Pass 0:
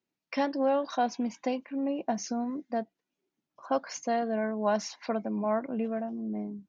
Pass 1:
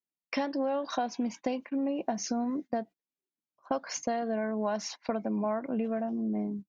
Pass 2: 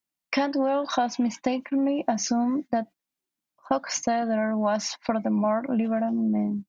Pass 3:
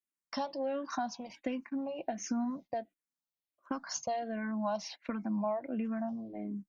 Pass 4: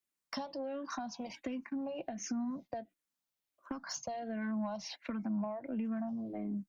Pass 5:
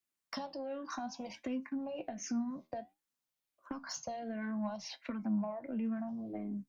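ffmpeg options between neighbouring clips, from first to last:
-af "agate=range=0.0891:threshold=0.00708:ratio=16:detection=peak,acompressor=threshold=0.0251:ratio=6,volume=1.68"
-af "equalizer=f=430:t=o:w=0.33:g=-10,volume=2.37"
-filter_complex "[0:a]asplit=2[s0][s1];[s1]afreqshift=-1.4[s2];[s0][s2]amix=inputs=2:normalize=1,volume=0.398"
-filter_complex "[0:a]acrossover=split=180[s0][s1];[s1]acompressor=threshold=0.00891:ratio=10[s2];[s0][s2]amix=inputs=2:normalize=0,asoftclip=type=tanh:threshold=0.0282,volume=1.58"
-af "flanger=delay=7.5:depth=5.7:regen=72:speed=0.6:shape=sinusoidal,volume=1.5"

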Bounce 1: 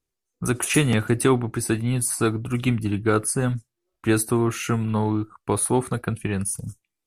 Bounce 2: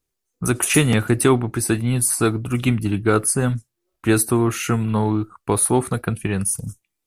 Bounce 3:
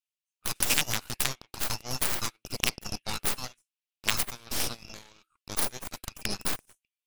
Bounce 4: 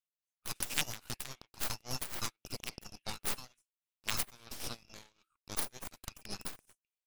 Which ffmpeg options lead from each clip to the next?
-af "highshelf=f=11000:g=6,volume=1.41"
-af "highpass=f=2700:t=q:w=3.4,acompressor=threshold=0.1:ratio=3,aeval=exprs='0.335*(cos(1*acos(clip(val(0)/0.335,-1,1)))-cos(1*PI/2))+0.133*(cos(3*acos(clip(val(0)/0.335,-1,1)))-cos(3*PI/2))+0.00188*(cos(5*acos(clip(val(0)/0.335,-1,1)))-cos(5*PI/2))+0.0841*(cos(6*acos(clip(val(0)/0.335,-1,1)))-cos(6*PI/2))+0.106*(cos(8*acos(clip(val(0)/0.335,-1,1)))-cos(8*PI/2))':c=same"
-af "tremolo=f=3.6:d=0.82,volume=0.596"

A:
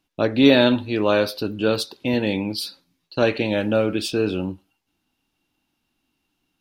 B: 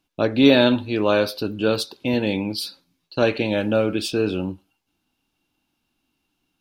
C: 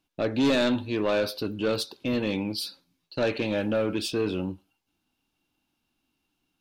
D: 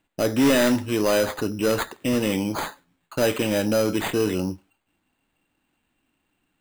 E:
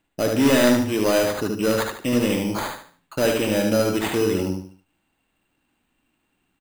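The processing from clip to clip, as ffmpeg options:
-af "bandreject=f=1900:w=14"
-af "asoftclip=type=tanh:threshold=0.188,volume=0.668"
-af "acrusher=samples=8:mix=1:aa=0.000001,volume=1.68"
-af "aecho=1:1:74|148|222|296:0.631|0.208|0.0687|0.0227"

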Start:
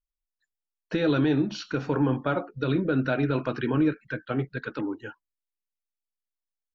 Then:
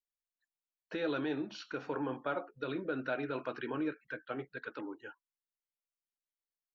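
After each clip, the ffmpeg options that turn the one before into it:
-af "bass=f=250:g=-15,treble=f=4000:g=-5,volume=0.422"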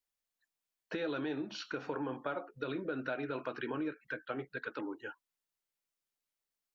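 -af "acompressor=threshold=0.00891:ratio=2.5,volume=1.68"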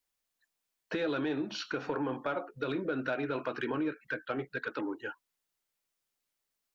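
-af "asoftclip=type=tanh:threshold=0.0473,volume=1.78"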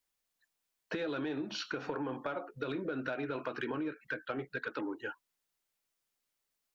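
-af "acompressor=threshold=0.0224:ratio=6"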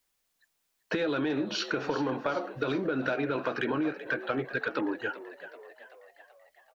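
-filter_complex "[0:a]asplit=7[s0][s1][s2][s3][s4][s5][s6];[s1]adelay=382,afreqshift=64,volume=0.188[s7];[s2]adelay=764,afreqshift=128,volume=0.107[s8];[s3]adelay=1146,afreqshift=192,volume=0.061[s9];[s4]adelay=1528,afreqshift=256,volume=0.0351[s10];[s5]adelay=1910,afreqshift=320,volume=0.02[s11];[s6]adelay=2292,afreqshift=384,volume=0.0114[s12];[s0][s7][s8][s9][s10][s11][s12]amix=inputs=7:normalize=0,volume=2.24"

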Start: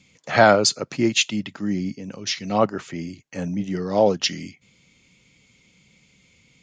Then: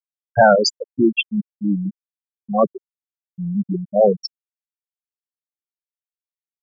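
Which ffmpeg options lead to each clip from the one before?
-af "acontrast=80,afftfilt=real='re*gte(hypot(re,im),0.891)':imag='im*gte(hypot(re,im),0.891)':win_size=1024:overlap=0.75,volume=0.891"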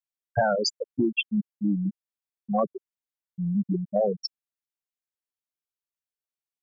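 -af "acompressor=threshold=0.126:ratio=6,volume=0.75"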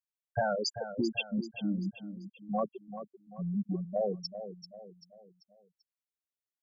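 -af "aecho=1:1:389|778|1167|1556:0.282|0.118|0.0497|0.0209,volume=0.447"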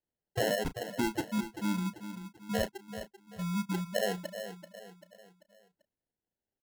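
-filter_complex "[0:a]acrusher=samples=37:mix=1:aa=0.000001,asplit=2[s0][s1];[s1]adelay=33,volume=0.211[s2];[s0][s2]amix=inputs=2:normalize=0"

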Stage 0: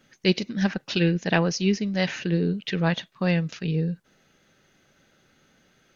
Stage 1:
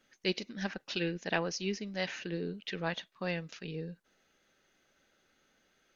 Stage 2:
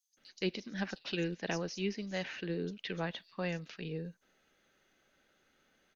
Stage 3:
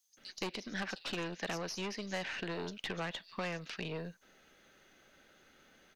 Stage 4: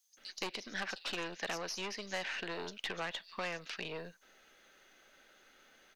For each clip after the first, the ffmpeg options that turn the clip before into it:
-af "equalizer=f=130:t=o:w=1.5:g=-11,volume=0.398"
-filter_complex "[0:a]acrossover=split=430[s0][s1];[s1]acompressor=threshold=0.0178:ratio=6[s2];[s0][s2]amix=inputs=2:normalize=0,acrossover=split=5700[s3][s4];[s3]adelay=170[s5];[s5][s4]amix=inputs=2:normalize=0"
-filter_complex "[0:a]aeval=exprs='(tanh(50.1*val(0)+0.5)-tanh(0.5))/50.1':c=same,acrossover=split=620|1400[s0][s1][s2];[s0]acompressor=threshold=0.00251:ratio=4[s3];[s1]acompressor=threshold=0.00282:ratio=4[s4];[s2]acompressor=threshold=0.00282:ratio=4[s5];[s3][s4][s5]amix=inputs=3:normalize=0,volume=3.16"
-af "equalizer=f=100:w=0.42:g=-12.5,volume=1.19"

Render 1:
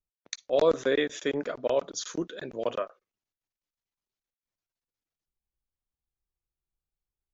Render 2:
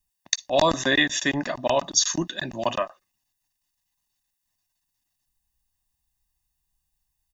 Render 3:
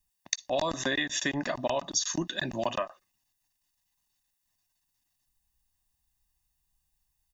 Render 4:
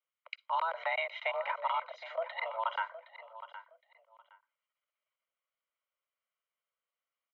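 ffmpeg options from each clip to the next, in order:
-af "highshelf=f=3900:g=9.5,aecho=1:1:1.1:1,volume=1.88"
-af "acompressor=threshold=0.0501:ratio=6"
-af "aecho=1:1:766|1532:0.2|0.0419,highpass=f=220:t=q:w=0.5412,highpass=f=220:t=q:w=1.307,lowpass=f=2700:t=q:w=0.5176,lowpass=f=2700:t=q:w=0.7071,lowpass=f=2700:t=q:w=1.932,afreqshift=330,volume=0.708"

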